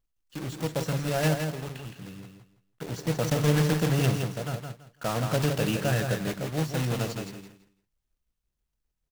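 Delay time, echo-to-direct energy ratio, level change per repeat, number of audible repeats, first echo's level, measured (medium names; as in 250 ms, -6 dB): 166 ms, -6.0 dB, -13.0 dB, 3, -6.0 dB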